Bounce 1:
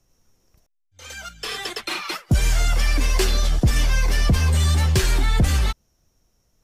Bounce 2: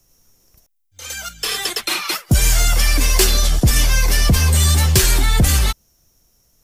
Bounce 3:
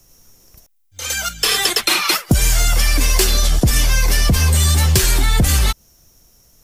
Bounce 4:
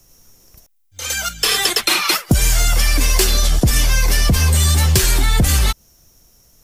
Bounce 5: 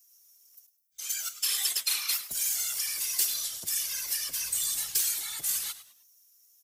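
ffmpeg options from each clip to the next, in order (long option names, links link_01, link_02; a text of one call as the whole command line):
ffmpeg -i in.wav -af "aemphasis=mode=production:type=50kf,volume=3.5dB" out.wav
ffmpeg -i in.wav -af "acompressor=threshold=-18dB:ratio=6,volume=7dB" out.wav
ffmpeg -i in.wav -af anull out.wav
ffmpeg -i in.wav -filter_complex "[0:a]aderivative,afftfilt=real='hypot(re,im)*cos(2*PI*random(0))':imag='hypot(re,im)*sin(2*PI*random(1))':win_size=512:overlap=0.75,asplit=4[link_01][link_02][link_03][link_04];[link_02]adelay=103,afreqshift=-120,volume=-14dB[link_05];[link_03]adelay=206,afreqshift=-240,volume=-23.9dB[link_06];[link_04]adelay=309,afreqshift=-360,volume=-33.8dB[link_07];[link_01][link_05][link_06][link_07]amix=inputs=4:normalize=0,volume=-3dB" out.wav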